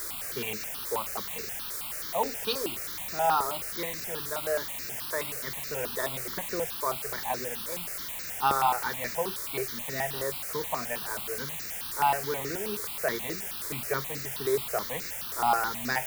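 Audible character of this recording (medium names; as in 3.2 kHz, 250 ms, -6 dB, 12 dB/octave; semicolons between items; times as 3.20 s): a quantiser's noise floor 6-bit, dither triangular; notches that jump at a steady rate 9.4 Hz 760–3200 Hz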